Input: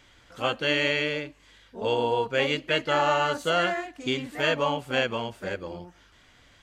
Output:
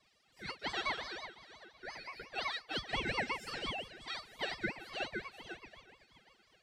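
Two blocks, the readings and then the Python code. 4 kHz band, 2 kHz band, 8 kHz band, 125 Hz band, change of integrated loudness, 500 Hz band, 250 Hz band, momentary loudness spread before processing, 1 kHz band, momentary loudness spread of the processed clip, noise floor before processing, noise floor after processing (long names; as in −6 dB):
−11.0 dB, −11.0 dB, −11.0 dB, −15.0 dB, −13.5 dB, −19.5 dB, −15.0 dB, 11 LU, −14.5 dB, 14 LU, −58 dBFS, −71 dBFS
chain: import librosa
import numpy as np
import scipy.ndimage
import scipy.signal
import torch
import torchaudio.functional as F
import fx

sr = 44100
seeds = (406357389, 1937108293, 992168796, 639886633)

p1 = fx.filter_lfo_highpass(x, sr, shape='saw_up', hz=8.2, low_hz=420.0, high_hz=2500.0, q=0.81)
p2 = fx.comb_fb(p1, sr, f0_hz=570.0, decay_s=0.16, harmonics='all', damping=0.0, mix_pct=100)
p3 = p2 + fx.echo_feedback(p2, sr, ms=381, feedback_pct=53, wet_db=-15.5, dry=0)
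p4 = fx.ring_lfo(p3, sr, carrier_hz=1300.0, swing_pct=30, hz=5.7)
y = p4 * librosa.db_to_amplitude(4.5)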